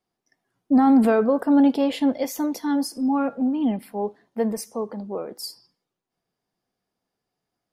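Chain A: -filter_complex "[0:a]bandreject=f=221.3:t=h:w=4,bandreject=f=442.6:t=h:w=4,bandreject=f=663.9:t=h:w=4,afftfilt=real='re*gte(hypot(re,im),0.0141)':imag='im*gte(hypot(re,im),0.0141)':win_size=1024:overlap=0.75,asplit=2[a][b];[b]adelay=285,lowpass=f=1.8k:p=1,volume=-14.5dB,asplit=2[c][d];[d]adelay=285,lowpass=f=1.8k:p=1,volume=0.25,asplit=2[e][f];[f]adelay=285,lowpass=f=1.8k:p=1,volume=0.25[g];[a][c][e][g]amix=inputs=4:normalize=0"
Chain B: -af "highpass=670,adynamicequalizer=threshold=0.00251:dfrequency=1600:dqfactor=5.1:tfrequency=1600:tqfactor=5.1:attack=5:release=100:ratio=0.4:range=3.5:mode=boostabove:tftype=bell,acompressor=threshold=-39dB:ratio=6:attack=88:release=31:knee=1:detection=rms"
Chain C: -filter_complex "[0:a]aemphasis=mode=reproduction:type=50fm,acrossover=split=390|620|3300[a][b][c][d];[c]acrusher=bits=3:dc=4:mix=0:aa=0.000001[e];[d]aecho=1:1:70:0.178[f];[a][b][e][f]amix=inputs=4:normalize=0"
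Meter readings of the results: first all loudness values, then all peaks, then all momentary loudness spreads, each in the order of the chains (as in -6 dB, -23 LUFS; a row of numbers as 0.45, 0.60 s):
-22.5, -37.0, -22.0 LUFS; -9.5, -20.5, -8.5 dBFS; 14, 6, 14 LU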